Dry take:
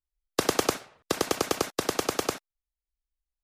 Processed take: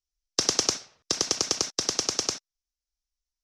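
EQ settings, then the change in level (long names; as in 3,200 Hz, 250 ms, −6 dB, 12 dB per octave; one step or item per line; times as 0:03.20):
low-pass with resonance 5,700 Hz, resonance Q 4.6
low-shelf EQ 270 Hz +5 dB
high-shelf EQ 3,000 Hz +10 dB
−8.0 dB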